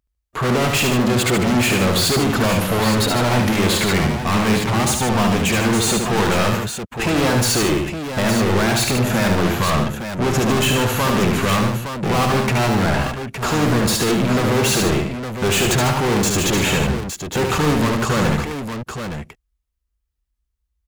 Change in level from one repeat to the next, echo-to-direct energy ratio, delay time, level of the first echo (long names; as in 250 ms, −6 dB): repeats not evenly spaced, −1.5 dB, 73 ms, −4.0 dB